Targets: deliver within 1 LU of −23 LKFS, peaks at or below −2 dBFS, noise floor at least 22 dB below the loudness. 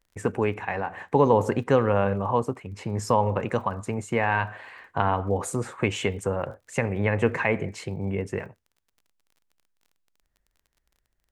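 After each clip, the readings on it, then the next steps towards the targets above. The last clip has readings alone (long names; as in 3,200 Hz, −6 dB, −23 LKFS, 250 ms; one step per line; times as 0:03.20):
crackle rate 28 per second; integrated loudness −26.0 LKFS; sample peak −6.0 dBFS; target loudness −23.0 LKFS
→ click removal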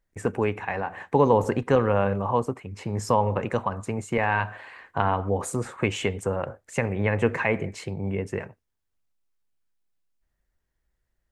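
crackle rate 0.088 per second; integrated loudness −26.0 LKFS; sample peak −6.0 dBFS; target loudness −23.0 LKFS
→ level +3 dB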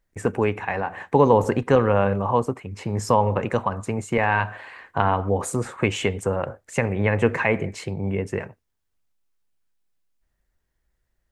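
integrated loudness −23.0 LKFS; sample peak −3.0 dBFS; background noise floor −75 dBFS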